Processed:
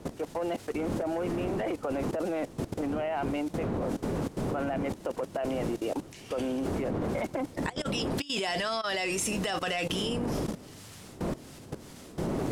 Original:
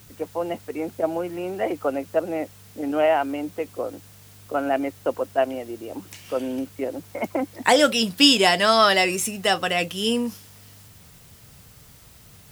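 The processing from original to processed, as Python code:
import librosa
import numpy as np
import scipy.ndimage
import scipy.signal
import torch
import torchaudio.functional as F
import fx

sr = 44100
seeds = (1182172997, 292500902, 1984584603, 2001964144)

y = fx.dmg_wind(x, sr, seeds[0], corner_hz=270.0, level_db=-27.0)
y = fx.low_shelf(y, sr, hz=92.0, db=-10.0)
y = fx.over_compress(y, sr, threshold_db=-26.0, ratio=-1.0)
y = 10.0 ** (-18.5 / 20.0) * np.tanh(y / 10.0 ** (-18.5 / 20.0))
y = scipy.signal.sosfilt(scipy.signal.butter(2, 9700.0, 'lowpass', fs=sr, output='sos'), y)
y = fx.low_shelf(y, sr, hz=200.0, db=-3.0)
y = fx.level_steps(y, sr, step_db=17)
y = F.gain(torch.from_numpy(y), 3.5).numpy()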